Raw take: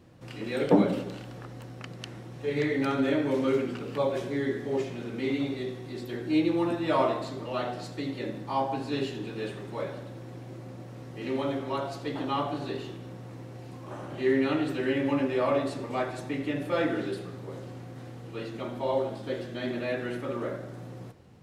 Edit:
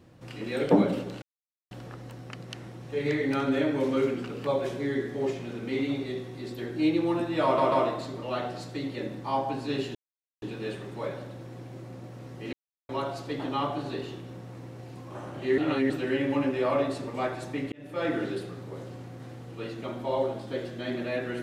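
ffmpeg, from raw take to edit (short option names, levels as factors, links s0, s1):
-filter_complex "[0:a]asplit=10[s0][s1][s2][s3][s4][s5][s6][s7][s8][s9];[s0]atrim=end=1.22,asetpts=PTS-STARTPTS,afade=t=out:st=1.216:d=0.004:c=hsin,apad=pad_dur=0.49[s10];[s1]atrim=start=1.22:end=7.092,asetpts=PTS-STARTPTS,afade=t=in:d=0.004:c=hsin[s11];[s2]atrim=start=6.948:end=7.092[s12];[s3]atrim=start=6.948:end=9.18,asetpts=PTS-STARTPTS,afade=t=out:st=2.228:d=0.004:c=hsin,apad=pad_dur=0.47[s13];[s4]atrim=start=9.18:end=11.29,asetpts=PTS-STARTPTS,afade=t=in:d=0.004:c=hsin,afade=t=out:st=2.106:d=0.004:c=hsin[s14];[s5]atrim=start=11.29:end=11.65,asetpts=PTS-STARTPTS,volume=0[s15];[s6]atrim=start=11.65:end=14.342,asetpts=PTS-STARTPTS,afade=t=in:d=0.004:c=hsin[s16];[s7]atrim=start=14.338:end=14.662,asetpts=PTS-STARTPTS,areverse[s17];[s8]atrim=start=14.658:end=16.48,asetpts=PTS-STARTPTS,afade=t=out:st=1.818:d=0.004:c=hsin[s18];[s9]atrim=start=16.48,asetpts=PTS-STARTPTS,afade=t=in:d=0.42[s19];[s10][s11]concat=n=2:v=0:a=1[s20];[s20][s12]acrossfade=d=0.004:c1=hsin:c2=hsin[s21];[s13][s14][s15][s16]concat=n=4:v=0:a=1[s22];[s21][s22]acrossfade=d=0.004:c1=hsin:c2=hsin[s23];[s23][s17]acrossfade=d=0.004:c1=hsin:c2=hsin[s24];[s18][s19]concat=n=2:v=0:a=1[s25];[s24][s25]acrossfade=d=0.004:c1=hsin:c2=hsin"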